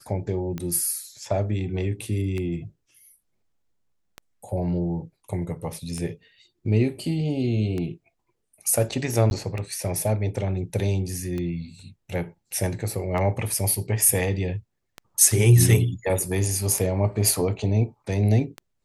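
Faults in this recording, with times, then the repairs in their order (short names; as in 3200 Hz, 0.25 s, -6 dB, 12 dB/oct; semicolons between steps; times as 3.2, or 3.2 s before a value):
tick 33 1/3 rpm -18 dBFS
9.3–9.31 gap 11 ms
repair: de-click; interpolate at 9.3, 11 ms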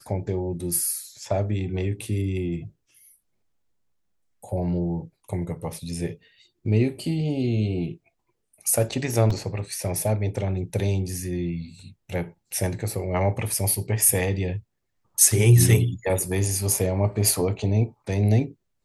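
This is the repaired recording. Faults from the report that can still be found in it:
none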